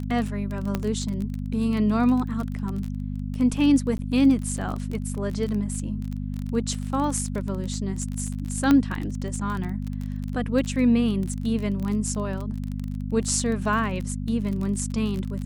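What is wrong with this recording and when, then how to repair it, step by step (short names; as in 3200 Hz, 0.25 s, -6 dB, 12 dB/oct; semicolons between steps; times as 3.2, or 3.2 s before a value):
crackle 26/s -28 dBFS
hum 50 Hz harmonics 5 -30 dBFS
0.75 pop -12 dBFS
3.98–3.99 gap 10 ms
8.71 pop -8 dBFS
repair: de-click; de-hum 50 Hz, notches 5; interpolate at 3.98, 10 ms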